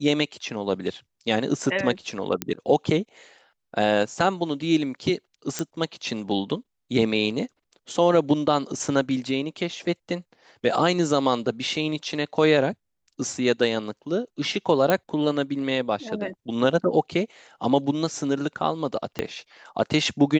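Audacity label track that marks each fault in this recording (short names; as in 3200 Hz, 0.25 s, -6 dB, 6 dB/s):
2.420000	2.420000	pop -9 dBFS
5.590000	5.590000	pop -11 dBFS
14.900000	14.900000	pop -7 dBFS
19.190000	19.190000	pop -12 dBFS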